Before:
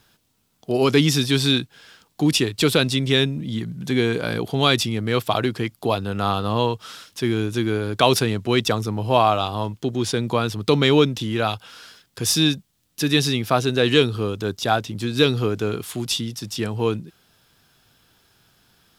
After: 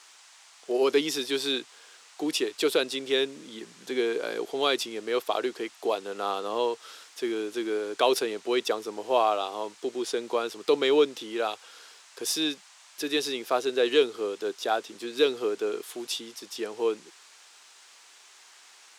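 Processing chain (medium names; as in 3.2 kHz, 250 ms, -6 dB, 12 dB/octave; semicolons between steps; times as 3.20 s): band noise 790–8200 Hz -46 dBFS; ladder high-pass 330 Hz, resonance 40%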